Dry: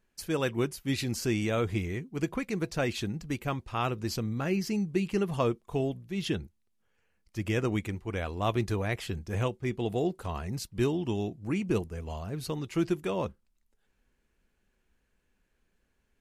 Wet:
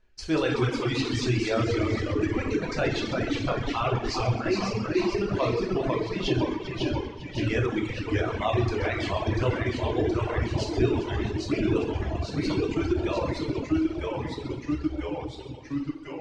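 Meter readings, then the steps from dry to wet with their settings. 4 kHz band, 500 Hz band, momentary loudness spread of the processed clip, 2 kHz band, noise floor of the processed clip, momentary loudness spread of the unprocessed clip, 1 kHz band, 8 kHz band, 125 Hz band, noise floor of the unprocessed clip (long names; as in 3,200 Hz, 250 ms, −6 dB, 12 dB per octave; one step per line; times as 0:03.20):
+6.0 dB, +5.5 dB, 6 LU, +6.0 dB, −40 dBFS, 6 LU, +5.5 dB, −0.5 dB, +4.5 dB, −75 dBFS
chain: delay with pitch and tempo change per echo 175 ms, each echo −1 semitone, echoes 3
reverb reduction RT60 1.1 s
low-pass filter 5,900 Hz 24 dB per octave
parametric band 170 Hz −10.5 dB 0.48 octaves
on a send: echo machine with several playback heads 132 ms, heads first and third, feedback 48%, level −11 dB
on the sum: reverb whose tail is shaped and stops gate 450 ms falling, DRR −2.5 dB
in parallel at +1.5 dB: brickwall limiter −19 dBFS, peak gain reduction 7 dB
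on the sum: reverb reduction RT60 1.9 s
low-shelf EQ 83 Hz +10 dB
level −4 dB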